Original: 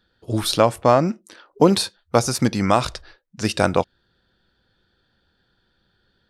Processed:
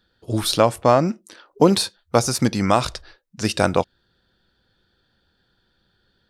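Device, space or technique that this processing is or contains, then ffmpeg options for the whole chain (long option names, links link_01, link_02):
exciter from parts: -filter_complex "[0:a]asplit=2[link_01][link_02];[link_02]highpass=2700,asoftclip=type=tanh:threshold=-25dB,volume=-11dB[link_03];[link_01][link_03]amix=inputs=2:normalize=0"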